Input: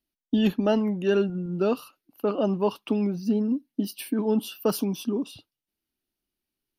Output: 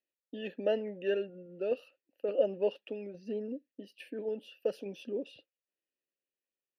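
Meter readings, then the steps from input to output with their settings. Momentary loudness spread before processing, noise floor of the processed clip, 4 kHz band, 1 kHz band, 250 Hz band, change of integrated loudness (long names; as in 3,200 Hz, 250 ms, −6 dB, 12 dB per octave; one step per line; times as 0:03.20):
7 LU, below −85 dBFS, −12.0 dB, −16.0 dB, −18.0 dB, −9.5 dB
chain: formant filter e
sample-and-hold tremolo
level +7 dB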